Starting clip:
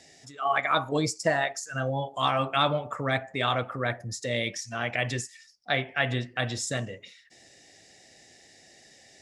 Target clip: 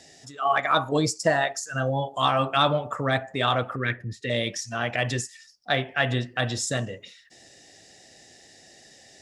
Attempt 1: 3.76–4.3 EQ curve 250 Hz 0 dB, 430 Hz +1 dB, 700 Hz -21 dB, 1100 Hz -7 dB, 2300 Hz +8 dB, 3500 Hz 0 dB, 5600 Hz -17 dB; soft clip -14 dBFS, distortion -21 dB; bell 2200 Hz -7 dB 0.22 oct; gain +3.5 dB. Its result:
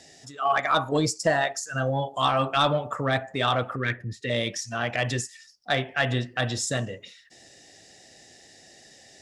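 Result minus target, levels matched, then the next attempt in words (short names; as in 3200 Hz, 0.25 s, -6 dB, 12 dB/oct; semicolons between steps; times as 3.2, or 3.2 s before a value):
soft clip: distortion +12 dB
3.76–4.3 EQ curve 250 Hz 0 dB, 430 Hz +1 dB, 700 Hz -21 dB, 1100 Hz -7 dB, 2300 Hz +8 dB, 3500 Hz 0 dB, 5600 Hz -17 dB; soft clip -7 dBFS, distortion -33 dB; bell 2200 Hz -7 dB 0.22 oct; gain +3.5 dB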